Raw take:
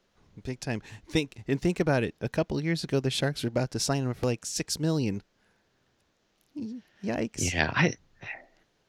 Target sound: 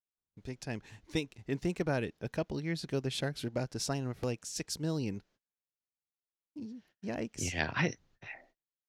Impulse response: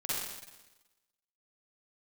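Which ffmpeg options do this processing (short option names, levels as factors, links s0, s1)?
-af "agate=range=0.0224:threshold=0.00178:ratio=16:detection=peak,volume=0.447"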